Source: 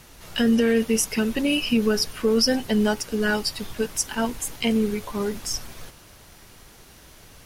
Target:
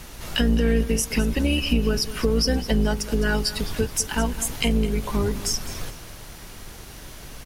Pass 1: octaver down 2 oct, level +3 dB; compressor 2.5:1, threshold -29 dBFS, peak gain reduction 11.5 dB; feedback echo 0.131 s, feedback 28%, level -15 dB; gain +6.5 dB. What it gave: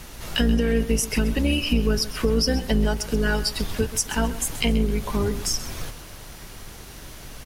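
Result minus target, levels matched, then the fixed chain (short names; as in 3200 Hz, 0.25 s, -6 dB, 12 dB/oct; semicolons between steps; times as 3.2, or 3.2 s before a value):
echo 78 ms early
octaver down 2 oct, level +3 dB; compressor 2.5:1, threshold -29 dBFS, peak gain reduction 11.5 dB; feedback echo 0.209 s, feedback 28%, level -15 dB; gain +6.5 dB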